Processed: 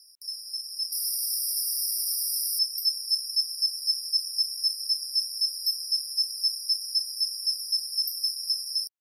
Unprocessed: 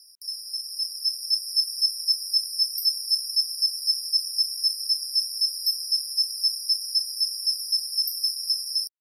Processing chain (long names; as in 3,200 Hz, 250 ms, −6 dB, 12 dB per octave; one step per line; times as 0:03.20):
0:00.92–0:02.59: every bin compressed towards the loudest bin 4 to 1
level −2.5 dB